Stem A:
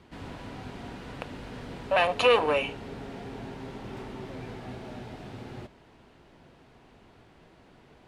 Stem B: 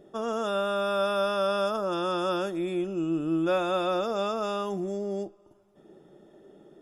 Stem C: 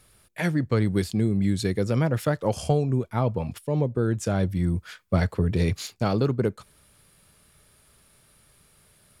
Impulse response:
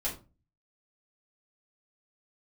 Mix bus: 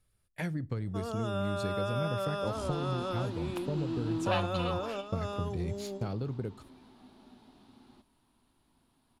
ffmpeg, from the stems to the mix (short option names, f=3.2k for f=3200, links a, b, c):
-filter_complex "[0:a]equalizer=f=125:t=o:w=1:g=-9,equalizer=f=250:t=o:w=1:g=12,equalizer=f=500:t=o:w=1:g=-9,equalizer=f=1k:t=o:w=1:g=9,equalizer=f=2k:t=o:w=1:g=-6,equalizer=f=4k:t=o:w=1:g=11,adelay=2350,volume=-8dB,afade=t=out:st=4.23:d=0.3:silence=0.251189[a];[1:a]adelay=800,volume=-8dB[b];[2:a]agate=range=-13dB:threshold=-45dB:ratio=16:detection=peak,lowshelf=f=160:g=10.5,acompressor=threshold=-24dB:ratio=6,volume=-8dB,asplit=3[c][d][e];[d]volume=-22.5dB[f];[e]apad=whole_len=335775[g];[b][g]sidechaingate=range=-9dB:threshold=-56dB:ratio=16:detection=peak[h];[3:a]atrim=start_sample=2205[i];[f][i]afir=irnorm=-1:irlink=0[j];[a][h][c][j]amix=inputs=4:normalize=0"